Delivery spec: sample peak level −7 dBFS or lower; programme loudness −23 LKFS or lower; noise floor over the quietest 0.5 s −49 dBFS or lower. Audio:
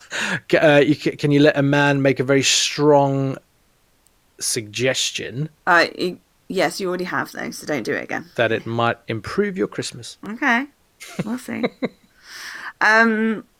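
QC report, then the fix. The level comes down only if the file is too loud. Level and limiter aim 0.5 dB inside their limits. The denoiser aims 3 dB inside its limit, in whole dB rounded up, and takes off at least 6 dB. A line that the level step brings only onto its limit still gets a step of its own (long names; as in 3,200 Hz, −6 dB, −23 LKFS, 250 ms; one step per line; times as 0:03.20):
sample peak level −3.0 dBFS: out of spec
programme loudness −19.0 LKFS: out of spec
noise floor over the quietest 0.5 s −60 dBFS: in spec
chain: level −4.5 dB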